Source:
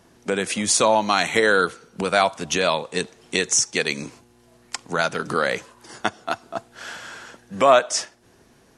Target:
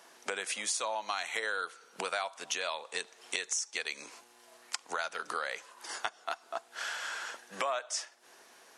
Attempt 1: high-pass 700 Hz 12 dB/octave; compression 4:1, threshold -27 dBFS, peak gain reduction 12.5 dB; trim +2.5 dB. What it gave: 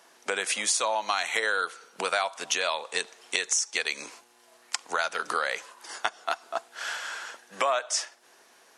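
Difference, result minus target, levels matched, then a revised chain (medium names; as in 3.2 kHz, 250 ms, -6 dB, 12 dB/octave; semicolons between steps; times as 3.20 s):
compression: peak gain reduction -7.5 dB
high-pass 700 Hz 12 dB/octave; compression 4:1, threshold -37 dBFS, peak gain reduction 20 dB; trim +2.5 dB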